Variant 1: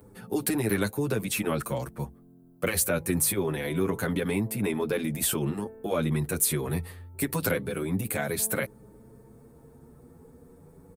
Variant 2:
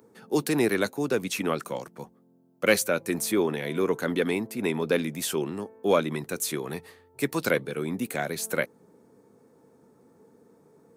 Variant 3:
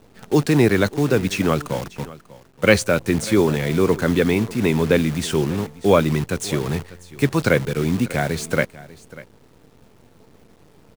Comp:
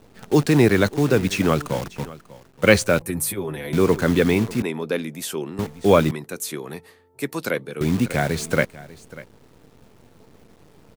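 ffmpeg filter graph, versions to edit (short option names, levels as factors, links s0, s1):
-filter_complex "[1:a]asplit=2[s0][s1];[2:a]asplit=4[s2][s3][s4][s5];[s2]atrim=end=3.022[s6];[0:a]atrim=start=3.018:end=3.732[s7];[s3]atrim=start=3.728:end=4.622[s8];[s0]atrim=start=4.618:end=5.592[s9];[s4]atrim=start=5.588:end=6.112[s10];[s1]atrim=start=6.108:end=7.812[s11];[s5]atrim=start=7.808[s12];[s6][s7]acrossfade=d=0.004:c1=hsin:c2=hsin[s13];[s13][s8]acrossfade=d=0.004:c1=hsin:c2=hsin[s14];[s14][s9]acrossfade=d=0.004:c1=hsin:c2=hsin[s15];[s15][s10]acrossfade=d=0.004:c1=hsin:c2=hsin[s16];[s16][s11]acrossfade=d=0.004:c1=hsin:c2=hsin[s17];[s17][s12]acrossfade=d=0.004:c1=hsin:c2=hsin"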